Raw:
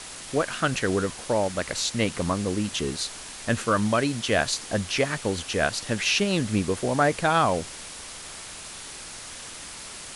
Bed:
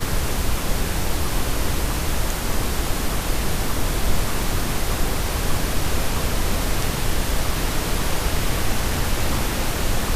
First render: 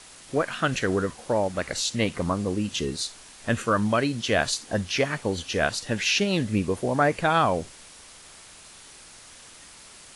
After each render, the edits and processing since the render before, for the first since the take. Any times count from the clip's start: noise print and reduce 8 dB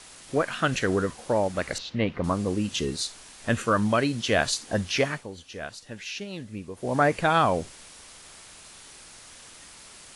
1.78–2.24 air absorption 300 m; 5.07–6.96 dip -12.5 dB, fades 0.20 s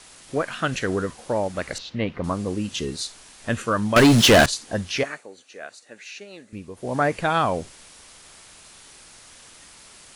3.96–4.46 sample leveller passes 5; 5.03–6.53 speaker cabinet 380–9900 Hz, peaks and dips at 970 Hz -6 dB, 3200 Hz -9 dB, 5200 Hz -7 dB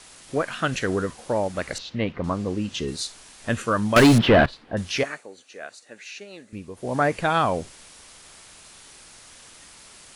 2.12–2.88 air absorption 56 m; 4.18–4.77 air absorption 430 m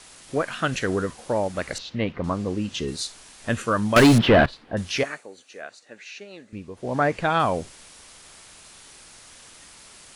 5.61–7.4 air absorption 53 m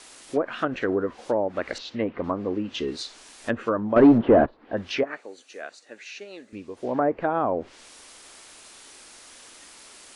treble ducked by the level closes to 860 Hz, closed at -19.5 dBFS; resonant low shelf 210 Hz -8 dB, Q 1.5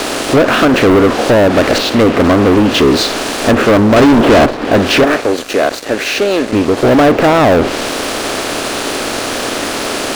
per-bin compression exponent 0.6; sample leveller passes 5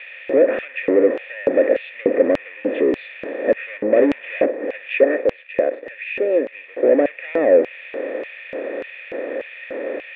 vocal tract filter e; LFO high-pass square 1.7 Hz 300–2600 Hz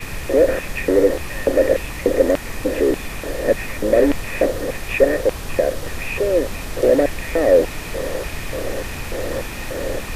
add bed -7 dB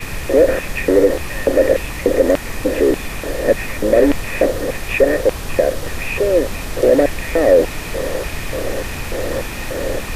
gain +3 dB; limiter -2 dBFS, peak gain reduction 2.5 dB

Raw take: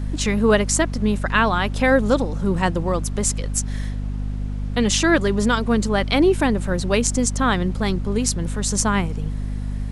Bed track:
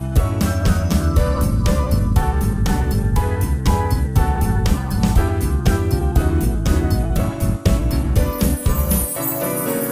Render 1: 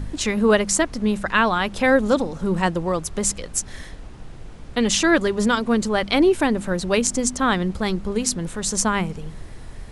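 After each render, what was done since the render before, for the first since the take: de-hum 50 Hz, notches 5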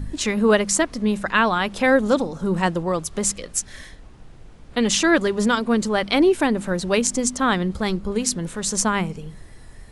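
noise print and reduce 6 dB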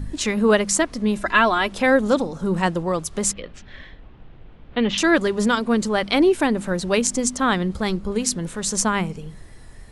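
1.17–1.72 comb 3 ms; 3.33–4.98 Chebyshev low-pass 3300 Hz, order 3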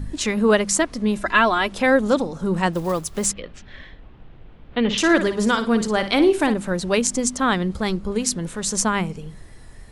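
2.73–3.27 block floating point 5-bit; 4.79–6.54 flutter echo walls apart 9.7 m, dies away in 0.33 s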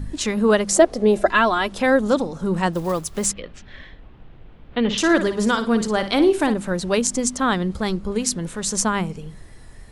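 0.69–1.3 spectral gain 340–850 Hz +11 dB; dynamic EQ 2300 Hz, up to -4 dB, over -34 dBFS, Q 2.2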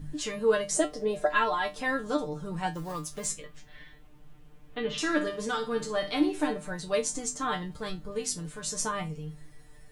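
resonator 150 Hz, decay 0.18 s, harmonics all, mix 100%; requantised 12-bit, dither none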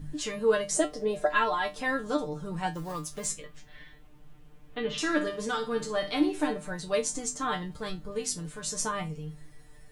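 nothing audible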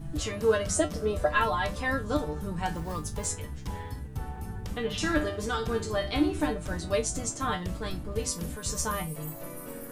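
add bed track -20 dB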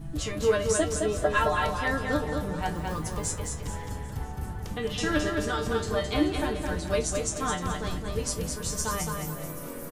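feedback echo 0.215 s, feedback 36%, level -4.5 dB; warbling echo 0.392 s, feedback 77%, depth 83 cents, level -21.5 dB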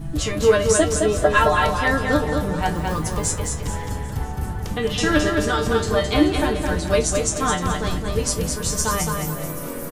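gain +8 dB

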